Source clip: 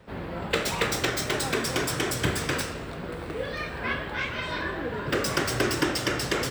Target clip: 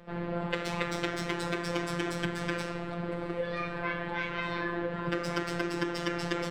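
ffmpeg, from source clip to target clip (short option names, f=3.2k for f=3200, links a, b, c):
-af "aemphasis=mode=reproduction:type=75fm,acompressor=threshold=-28dB:ratio=6,afftfilt=real='hypot(re,im)*cos(PI*b)':imag='0':win_size=1024:overlap=0.75,volume=3dB"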